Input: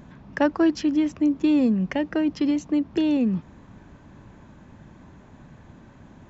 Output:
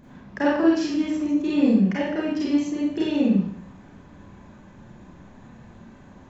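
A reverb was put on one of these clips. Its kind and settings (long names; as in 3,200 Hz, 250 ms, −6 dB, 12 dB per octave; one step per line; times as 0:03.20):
four-comb reverb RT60 0.62 s, combs from 31 ms, DRR −7 dB
level −6 dB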